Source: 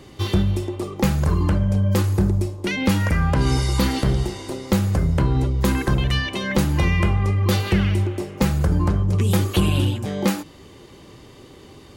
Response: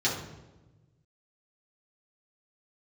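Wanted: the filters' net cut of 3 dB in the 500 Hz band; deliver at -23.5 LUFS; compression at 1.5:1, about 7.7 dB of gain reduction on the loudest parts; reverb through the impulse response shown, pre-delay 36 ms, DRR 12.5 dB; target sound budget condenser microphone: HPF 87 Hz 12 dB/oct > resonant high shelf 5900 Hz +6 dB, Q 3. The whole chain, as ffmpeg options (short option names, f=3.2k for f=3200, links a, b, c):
-filter_complex "[0:a]equalizer=f=500:t=o:g=-4,acompressor=threshold=-37dB:ratio=1.5,asplit=2[a][b];[1:a]atrim=start_sample=2205,adelay=36[c];[b][c]afir=irnorm=-1:irlink=0,volume=-23dB[d];[a][d]amix=inputs=2:normalize=0,highpass=87,highshelf=f=5.9k:t=q:w=3:g=6,volume=6dB"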